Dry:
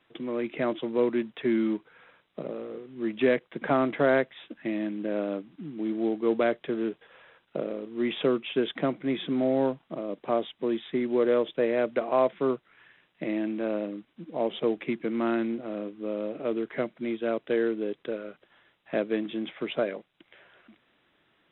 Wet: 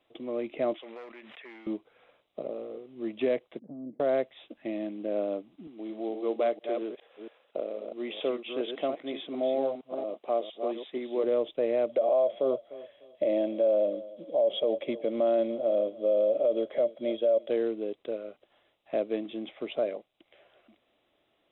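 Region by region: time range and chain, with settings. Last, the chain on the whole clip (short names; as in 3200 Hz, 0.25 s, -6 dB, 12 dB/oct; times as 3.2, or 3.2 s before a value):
0.74–1.67 overloaded stage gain 21.5 dB + band-pass 1900 Hz, Q 2 + backwards sustainer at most 20 dB/s
3.59–4 compressor 2:1, threshold -26 dBFS + Butterworth band-pass 190 Hz, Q 1.5 + Doppler distortion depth 0.12 ms
5.67–11.24 reverse delay 0.23 s, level -7 dB + HPF 120 Hz + low shelf 220 Hz -12 dB
11.89–17.5 small resonant body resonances 570/3300 Hz, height 17 dB, ringing for 40 ms + darkening echo 0.298 s, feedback 29%, low-pass 1500 Hz, level -22 dB
whole clip: fifteen-band EQ 160 Hz -9 dB, 630 Hz +7 dB, 1600 Hz -10 dB; limiter -14.5 dBFS; notch 940 Hz, Q 13; gain -3.5 dB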